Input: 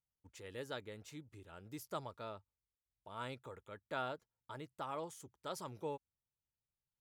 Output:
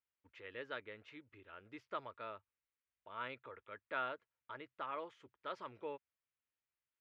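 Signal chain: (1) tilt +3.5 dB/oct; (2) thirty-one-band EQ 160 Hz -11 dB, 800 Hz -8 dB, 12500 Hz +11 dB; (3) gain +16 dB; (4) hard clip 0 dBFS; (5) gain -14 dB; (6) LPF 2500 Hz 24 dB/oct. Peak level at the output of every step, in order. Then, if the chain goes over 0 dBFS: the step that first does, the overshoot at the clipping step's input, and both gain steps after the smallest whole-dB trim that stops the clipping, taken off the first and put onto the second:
-25.0, -21.0, -5.0, -5.0, -19.0, -25.5 dBFS; no overload

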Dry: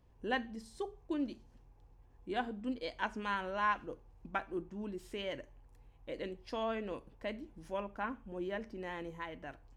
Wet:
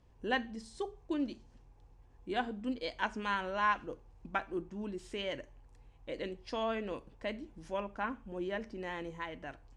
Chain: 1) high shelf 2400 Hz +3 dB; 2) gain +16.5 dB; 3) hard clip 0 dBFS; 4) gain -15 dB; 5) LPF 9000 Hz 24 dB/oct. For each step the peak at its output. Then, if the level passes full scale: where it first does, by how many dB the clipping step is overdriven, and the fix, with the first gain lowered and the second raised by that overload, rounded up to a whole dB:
-19.5, -3.0, -3.0, -18.0, -18.0 dBFS; no overload

